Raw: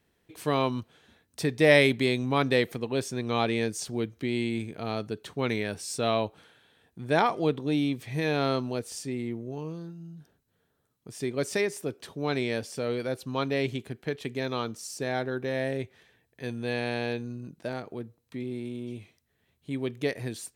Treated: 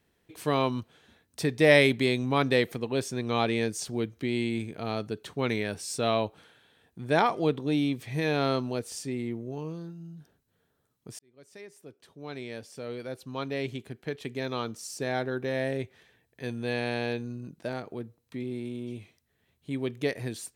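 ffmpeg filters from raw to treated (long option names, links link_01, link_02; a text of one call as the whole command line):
ffmpeg -i in.wav -filter_complex "[0:a]asplit=2[link_01][link_02];[link_01]atrim=end=11.19,asetpts=PTS-STARTPTS,afade=type=out:start_time=11.186:duration=0.004:curve=hsin[link_03];[link_02]atrim=start=11.19,asetpts=PTS-STARTPTS,afade=type=in:duration=3.92[link_04];[link_03][link_04]concat=n=2:v=0:a=1" out.wav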